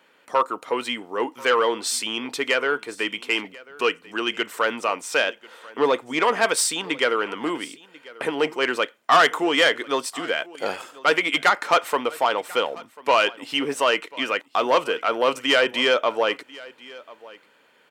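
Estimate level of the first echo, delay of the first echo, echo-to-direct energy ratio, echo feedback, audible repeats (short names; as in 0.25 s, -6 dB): -21.5 dB, 1.041 s, -21.5 dB, no steady repeat, 1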